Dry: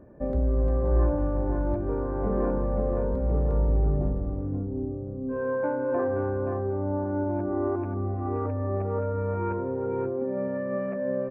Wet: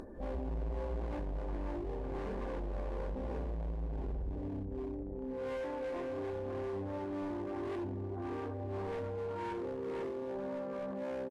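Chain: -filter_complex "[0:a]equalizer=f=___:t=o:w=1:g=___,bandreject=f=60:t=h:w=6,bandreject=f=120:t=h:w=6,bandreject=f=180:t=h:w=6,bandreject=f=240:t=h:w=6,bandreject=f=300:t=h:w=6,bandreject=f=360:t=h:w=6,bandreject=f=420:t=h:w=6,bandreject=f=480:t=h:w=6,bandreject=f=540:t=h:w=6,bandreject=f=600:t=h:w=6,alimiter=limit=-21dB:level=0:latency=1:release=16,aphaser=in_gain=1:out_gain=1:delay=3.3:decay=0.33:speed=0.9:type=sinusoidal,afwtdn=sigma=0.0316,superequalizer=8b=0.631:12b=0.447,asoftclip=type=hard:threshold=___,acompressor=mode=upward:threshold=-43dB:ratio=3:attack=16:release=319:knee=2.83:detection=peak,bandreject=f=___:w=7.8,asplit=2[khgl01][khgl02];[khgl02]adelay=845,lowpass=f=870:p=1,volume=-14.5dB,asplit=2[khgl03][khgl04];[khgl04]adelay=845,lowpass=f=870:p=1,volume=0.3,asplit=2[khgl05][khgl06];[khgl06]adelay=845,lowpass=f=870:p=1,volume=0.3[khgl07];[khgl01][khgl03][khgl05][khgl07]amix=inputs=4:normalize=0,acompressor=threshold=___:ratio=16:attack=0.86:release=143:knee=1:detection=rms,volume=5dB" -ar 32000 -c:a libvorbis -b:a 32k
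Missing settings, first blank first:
130, -13, -30dB, 1300, -40dB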